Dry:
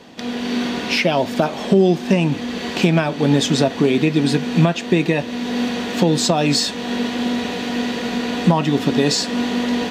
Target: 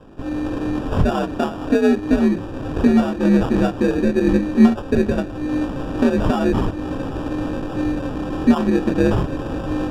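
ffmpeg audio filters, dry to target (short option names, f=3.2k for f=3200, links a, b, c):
-af "afreqshift=61,flanger=delay=18:depth=7.3:speed=0.42,acrusher=samples=21:mix=1:aa=0.000001,aemphasis=mode=reproduction:type=riaa,volume=-2.5dB"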